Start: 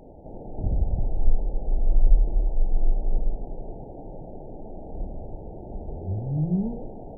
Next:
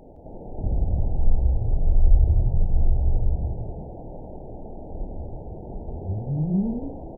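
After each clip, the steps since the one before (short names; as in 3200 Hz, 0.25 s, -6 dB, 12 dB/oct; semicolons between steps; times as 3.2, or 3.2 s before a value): frequency-shifting echo 0.164 s, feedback 36%, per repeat +45 Hz, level -7 dB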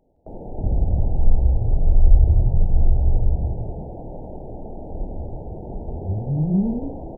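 gate with hold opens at -30 dBFS; gain +3.5 dB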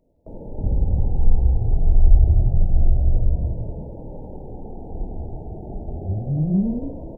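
cascading phaser falling 0.29 Hz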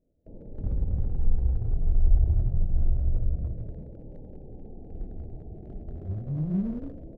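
Wiener smoothing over 41 samples; gain -7.5 dB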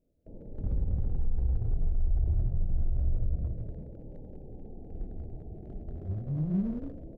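limiter -18.5 dBFS, peak gain reduction 8 dB; gain -1.5 dB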